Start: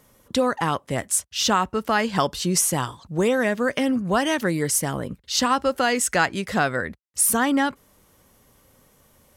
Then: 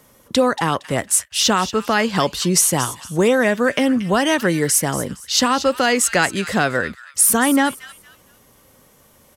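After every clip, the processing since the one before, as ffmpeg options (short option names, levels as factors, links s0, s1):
-filter_complex "[0:a]acrossover=split=580|1500[s0][s1][s2];[s0]lowshelf=f=87:g=-7[s3];[s1]alimiter=limit=0.0944:level=0:latency=1[s4];[s2]asplit=4[s5][s6][s7][s8];[s6]adelay=231,afreqshift=-72,volume=0.237[s9];[s7]adelay=462,afreqshift=-144,volume=0.0708[s10];[s8]adelay=693,afreqshift=-216,volume=0.0214[s11];[s5][s9][s10][s11]amix=inputs=4:normalize=0[s12];[s3][s4][s12]amix=inputs=3:normalize=0,volume=1.88"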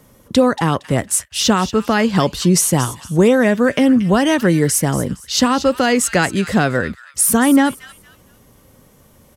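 -af "lowshelf=f=370:g=9.5,volume=0.891"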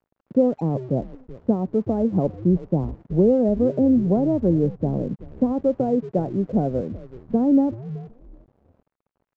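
-filter_complex "[0:a]asuperpass=centerf=290:order=8:qfactor=0.51,asplit=4[s0][s1][s2][s3];[s1]adelay=377,afreqshift=-120,volume=0.178[s4];[s2]adelay=754,afreqshift=-240,volume=0.0531[s5];[s3]adelay=1131,afreqshift=-360,volume=0.016[s6];[s0][s4][s5][s6]amix=inputs=4:normalize=0,aresample=16000,aeval=exprs='sgn(val(0))*max(abs(val(0))-0.00473,0)':c=same,aresample=44100,volume=0.596"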